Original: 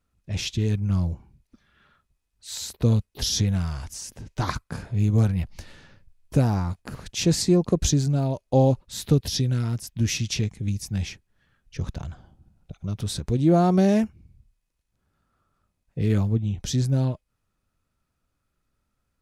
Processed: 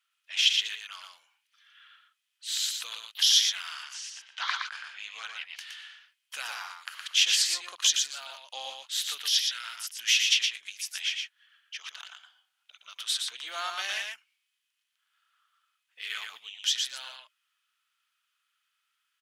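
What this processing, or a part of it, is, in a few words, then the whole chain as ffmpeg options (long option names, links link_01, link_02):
headphones lying on a table: -filter_complex "[0:a]asettb=1/sr,asplit=3[link_01][link_02][link_03];[link_01]atrim=end=3.834[link_04];[link_02]atrim=start=3.83:end=5.56,asetpts=PTS-STARTPTS,afade=type=in:duration=0.004:curve=qsin,afade=type=out:start_time=1.726:duration=0.004:curve=qsin,lowpass=5100[link_05];[link_03]atrim=start=5.556[link_06];[link_04][link_05]acrossfade=duration=0.004:curve1=hsin:curve2=qsin[link_07];[link_07][link_06]acrossfade=duration=0.004:curve1=qsin:curve2=hsin,highpass=frequency=1400:width=0.5412,highpass=frequency=1400:width=1.3066,bass=frequency=250:gain=5,treble=frequency=4000:gain=-4,equalizer=frequency=3100:width_type=o:width=0.35:gain=11,aecho=1:1:117:0.596,volume=4.5dB"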